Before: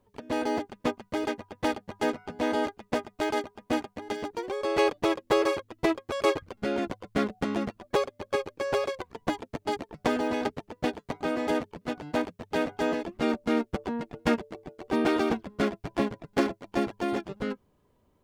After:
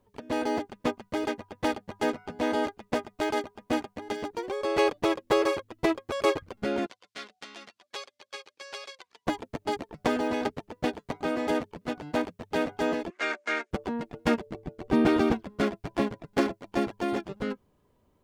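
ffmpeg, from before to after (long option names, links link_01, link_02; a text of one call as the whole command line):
ffmpeg -i in.wav -filter_complex "[0:a]asettb=1/sr,asplit=3[link_01][link_02][link_03];[link_01]atrim=end=6.864[link_04];[link_02]atrim=start=6.86:end=9.26,asetpts=PTS-STARTPTS,afade=type=in:duration=0.004:curve=qsin,afade=type=out:start_time=2.396:duration=0.004:curve=qsin,bandpass=frequency=4600:width_type=q:width=0.97[link_05];[link_03]atrim=start=9.256[link_06];[link_04][link_05]acrossfade=duration=0.004:curve1=hsin:curve2=qsin[link_07];[link_07][link_06]acrossfade=duration=0.004:curve1=qsin:curve2=hsin,asettb=1/sr,asplit=3[link_08][link_09][link_10];[link_08]atrim=end=13.104[link_11];[link_09]atrim=start=13.1:end=13.71,asetpts=PTS-STARTPTS,afade=type=in:duration=0.004:curve=qsin,afade=type=out:start_time=0.606:duration=0.004:curve=qsin,highpass=frequency=430:width=0.5412,highpass=frequency=430:width=1.3066,equalizer=frequency=470:width_type=q:width=4:gain=-8,equalizer=frequency=820:width_type=q:width=4:gain=-7,equalizer=frequency=1600:width_type=q:width=4:gain=10,equalizer=frequency=2200:width_type=q:width=4:gain=9,equalizer=frequency=6600:width_type=q:width=4:gain=5,lowpass=frequency=8900:width=0.5412,lowpass=frequency=8900:width=1.3066[link_12];[link_10]atrim=start=13.706[link_13];[link_11][link_12]acrossfade=duration=0.004:curve1=hsin:curve2=qsin[link_14];[link_14][link_13]acrossfade=duration=0.004:curve1=qsin:curve2=hsin,asettb=1/sr,asplit=3[link_15][link_16][link_17];[link_15]atrim=end=14.464[link_18];[link_16]atrim=start=14.46:end=15.32,asetpts=PTS-STARTPTS,afade=type=in:duration=0.004:curve=qsin,afade=type=out:start_time=0.856:duration=0.004:curve=qsin,bass=frequency=250:gain=10,treble=frequency=4000:gain=-2[link_19];[link_17]atrim=start=15.316[link_20];[link_18][link_19]acrossfade=duration=0.004:curve1=hsin:curve2=qsin[link_21];[link_21][link_20]acrossfade=duration=0.004:curve1=qsin:curve2=hsin" out.wav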